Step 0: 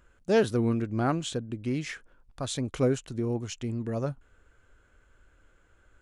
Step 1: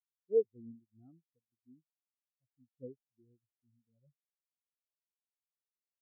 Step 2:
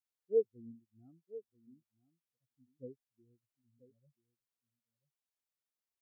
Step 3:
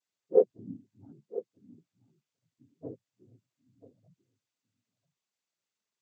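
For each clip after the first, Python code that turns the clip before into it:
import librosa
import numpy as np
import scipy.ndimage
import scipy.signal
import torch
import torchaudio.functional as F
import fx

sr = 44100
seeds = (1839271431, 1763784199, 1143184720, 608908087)

y1 = fx.spectral_expand(x, sr, expansion=4.0)
y1 = F.gain(torch.from_numpy(y1), -7.0).numpy()
y2 = y1 + 10.0 ** (-17.0 / 20.0) * np.pad(y1, (int(986 * sr / 1000.0), 0))[:len(y1)]
y2 = F.gain(torch.from_numpy(y2), -1.0).numpy()
y3 = fx.noise_vocoder(y2, sr, seeds[0], bands=16)
y3 = F.gain(torch.from_numpy(y3), 7.5).numpy()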